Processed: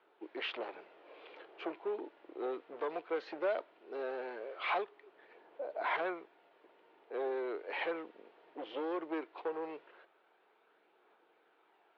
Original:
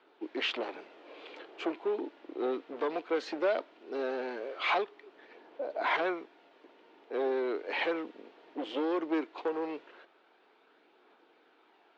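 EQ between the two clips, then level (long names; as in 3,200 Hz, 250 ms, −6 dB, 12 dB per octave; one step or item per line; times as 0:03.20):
high-frequency loss of the air 240 metres
parametric band 260 Hz −10 dB 0.64 octaves
−3.0 dB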